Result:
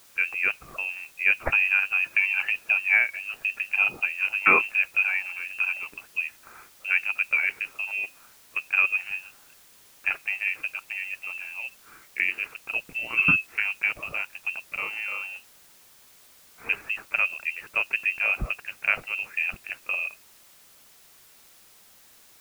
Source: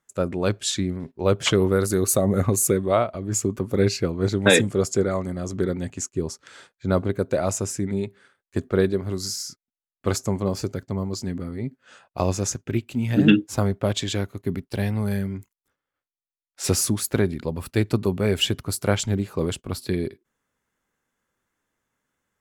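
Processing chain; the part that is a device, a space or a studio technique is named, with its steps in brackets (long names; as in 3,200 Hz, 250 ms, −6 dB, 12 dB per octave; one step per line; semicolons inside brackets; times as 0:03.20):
scrambled radio voice (band-pass filter 310–2,700 Hz; voice inversion scrambler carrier 2,900 Hz; white noise bed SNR 26 dB)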